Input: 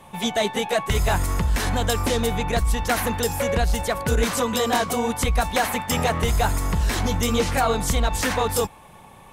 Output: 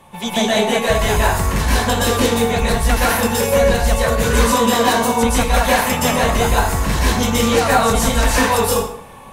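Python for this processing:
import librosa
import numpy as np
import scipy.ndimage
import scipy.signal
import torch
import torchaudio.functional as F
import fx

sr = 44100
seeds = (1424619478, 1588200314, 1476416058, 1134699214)

y = fx.rev_plate(x, sr, seeds[0], rt60_s=0.59, hf_ratio=0.8, predelay_ms=110, drr_db=-7.0)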